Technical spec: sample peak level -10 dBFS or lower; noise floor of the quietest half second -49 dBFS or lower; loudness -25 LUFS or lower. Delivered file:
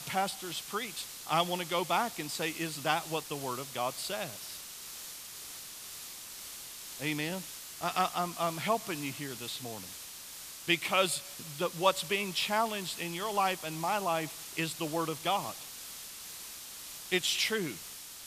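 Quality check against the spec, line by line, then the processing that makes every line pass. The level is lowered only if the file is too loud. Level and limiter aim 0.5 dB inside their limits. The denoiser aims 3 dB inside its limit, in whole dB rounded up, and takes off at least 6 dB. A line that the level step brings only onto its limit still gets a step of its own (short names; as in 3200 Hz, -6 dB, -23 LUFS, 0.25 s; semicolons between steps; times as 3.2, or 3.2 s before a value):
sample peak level -11.0 dBFS: OK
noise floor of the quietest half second -46 dBFS: fail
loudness -34.0 LUFS: OK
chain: denoiser 6 dB, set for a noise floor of -46 dBFS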